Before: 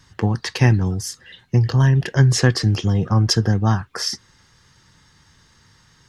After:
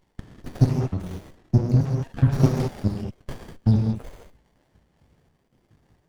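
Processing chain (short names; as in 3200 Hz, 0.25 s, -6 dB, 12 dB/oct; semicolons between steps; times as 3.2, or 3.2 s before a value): random spectral dropouts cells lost 82%; non-linear reverb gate 0.24 s flat, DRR 0 dB; running maximum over 33 samples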